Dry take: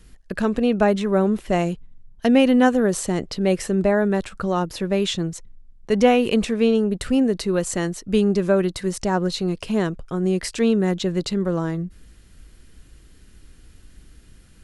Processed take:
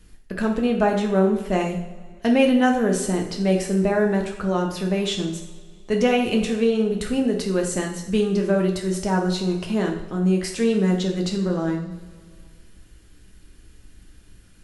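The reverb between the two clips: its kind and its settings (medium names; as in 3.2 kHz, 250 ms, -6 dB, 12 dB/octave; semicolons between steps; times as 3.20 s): two-slope reverb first 0.59 s, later 2.2 s, from -17 dB, DRR 0.5 dB; trim -3.5 dB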